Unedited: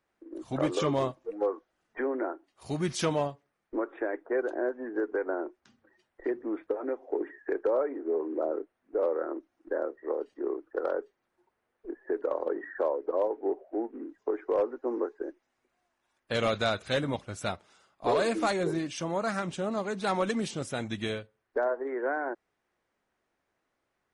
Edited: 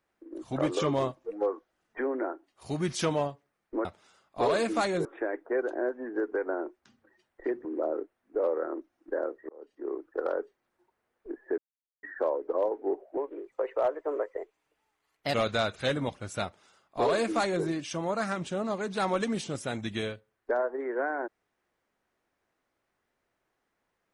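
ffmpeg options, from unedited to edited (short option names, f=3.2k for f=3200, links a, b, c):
-filter_complex "[0:a]asplit=9[a][b][c][d][e][f][g][h][i];[a]atrim=end=3.852[j];[b]atrim=start=17.508:end=18.712[k];[c]atrim=start=3.848:end=6.452[l];[d]atrim=start=8.238:end=10.08,asetpts=PTS-STARTPTS,afade=t=out:st=1.838:d=0.004:c=hsin[m];[e]atrim=start=10.08:end=12.17,asetpts=PTS-STARTPTS,afade=t=in:d=0.54,afade=t=out:st=2.086:d=0.004:c=hsin[n];[f]atrim=start=12.17:end=12.62,asetpts=PTS-STARTPTS,volume=0[o];[g]atrim=start=12.62:end=13.764,asetpts=PTS-STARTPTS,afade=t=in:d=0.004:c=hsin[p];[h]atrim=start=13.76:end=16.41,asetpts=PTS-STARTPTS,asetrate=53802,aresample=44100[q];[i]atrim=start=16.406[r];[j][k]acrossfade=d=0.004:c1=hsin:c2=hsin[s];[s][l]acrossfade=d=0.004:c1=hsin:c2=hsin[t];[m][n][o][p]concat=n=4:v=0:a=1[u];[t][u]acrossfade=d=0.004:c1=hsin:c2=hsin[v];[v][q]acrossfade=d=0.004:c1=hsin:c2=hsin[w];[w][r]acrossfade=d=0.004:c1=hsin:c2=hsin"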